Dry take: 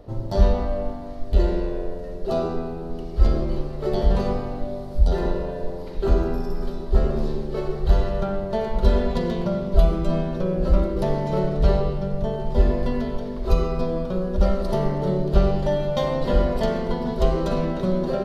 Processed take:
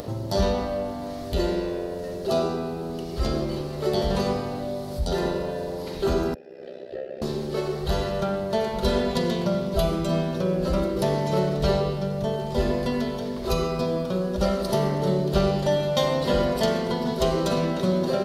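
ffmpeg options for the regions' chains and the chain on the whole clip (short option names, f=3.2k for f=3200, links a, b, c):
-filter_complex "[0:a]asettb=1/sr,asplit=3[a][b][c];[a]atrim=end=6.344[d];[b]atrim=start=6.34:end=7.22,asetpts=PTS-STARTPTS,afade=t=in:d=0.004:c=qsin,afade=t=out:st=0.876:d=0.004:c=qsin,acrossover=split=4600[e][f];[f]acompressor=threshold=-59dB:ratio=4:attack=1:release=60[g];[e][g]amix=inputs=2:normalize=0,asplit=3[h][i][j];[h]bandpass=f=530:t=q:w=8,volume=0dB[k];[i]bandpass=f=1.84k:t=q:w=8,volume=-6dB[l];[j]bandpass=f=2.48k:t=q:w=8,volume=-9dB[m];[k][l][m]amix=inputs=3:normalize=0,tremolo=f=65:d=0.824[n];[c]atrim=start=7.216[o];[d][n]acrossfade=d=0.004:c1=hsin:c2=qsin[p];[p][o]acrossfade=d=0.004:c1=qsin:c2=hsin,highpass=92,highshelf=f=3.2k:g=12,acompressor=mode=upward:threshold=-26dB:ratio=2.5"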